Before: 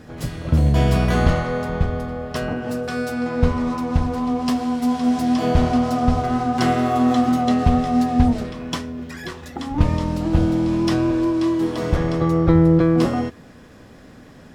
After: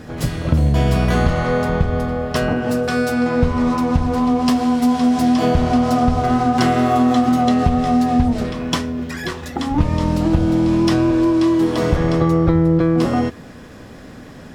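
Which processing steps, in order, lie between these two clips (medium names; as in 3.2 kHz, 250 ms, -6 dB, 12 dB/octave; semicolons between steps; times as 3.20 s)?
compression, threshold -18 dBFS, peak gain reduction 9 dB; trim +6.5 dB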